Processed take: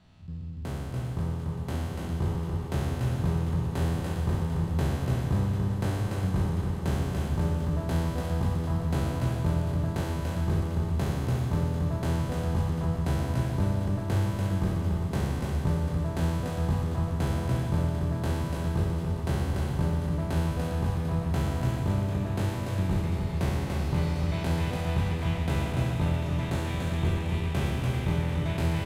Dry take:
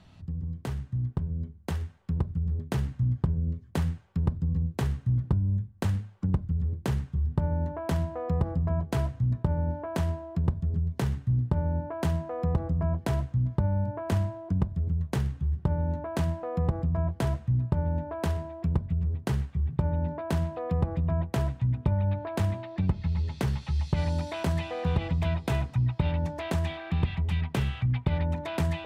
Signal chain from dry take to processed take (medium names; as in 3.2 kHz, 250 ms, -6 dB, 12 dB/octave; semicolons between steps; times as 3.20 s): spectral sustain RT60 2.35 s; bouncing-ball echo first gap 290 ms, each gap 0.85×, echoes 5; trim -6 dB